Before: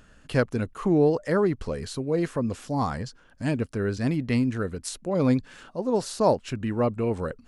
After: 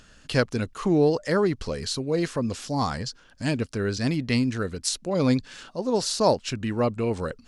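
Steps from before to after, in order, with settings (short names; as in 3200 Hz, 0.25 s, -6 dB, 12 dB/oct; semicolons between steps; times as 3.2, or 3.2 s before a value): bell 4900 Hz +10.5 dB 1.7 oct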